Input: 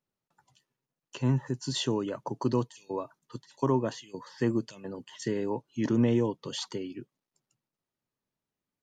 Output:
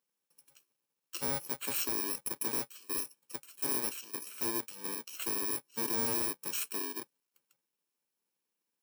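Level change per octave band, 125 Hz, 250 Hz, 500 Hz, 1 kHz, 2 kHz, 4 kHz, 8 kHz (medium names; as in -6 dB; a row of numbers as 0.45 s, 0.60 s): -20.5 dB, -14.0 dB, -11.5 dB, -5.0 dB, +1.5 dB, -3.0 dB, +9.0 dB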